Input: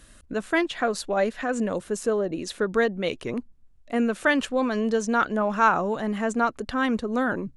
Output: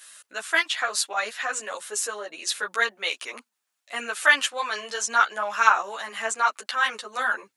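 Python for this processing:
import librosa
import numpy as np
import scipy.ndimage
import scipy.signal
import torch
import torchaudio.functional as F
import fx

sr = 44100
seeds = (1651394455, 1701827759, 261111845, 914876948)

y = scipy.signal.sosfilt(scipy.signal.butter(2, 1000.0, 'highpass', fs=sr, output='sos'), x)
y = fx.tilt_eq(y, sr, slope=2.0)
y = fx.ensemble(y, sr)
y = y * 10.0 ** (7.5 / 20.0)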